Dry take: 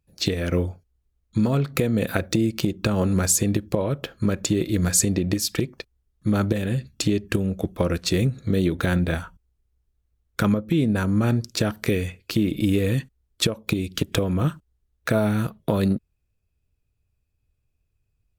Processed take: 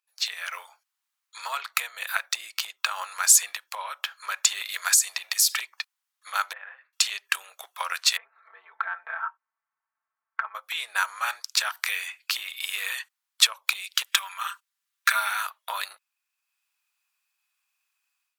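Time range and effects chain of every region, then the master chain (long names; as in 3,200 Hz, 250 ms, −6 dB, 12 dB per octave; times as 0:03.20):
0:04.92–0:05.55: high-shelf EQ 4,200 Hz +10 dB + downward compressor 20 to 1, threshold −21 dBFS + gain into a clipping stage and back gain 11 dB
0:06.53–0:06.93: low-pass filter 1,800 Hz 24 dB per octave + downward compressor 3 to 1, threshold −29 dBFS
0:08.17–0:10.55: low-pass filter 1,600 Hz 24 dB per octave + downward compressor 4 to 1, threshold −31 dBFS + comb filter 4.5 ms, depth 85%
0:14.06–0:15.31: high-pass filter 1,100 Hz + comb filter 5.1 ms, depth 56%
whole clip: automatic gain control; Butterworth high-pass 930 Hz 36 dB per octave; level −1 dB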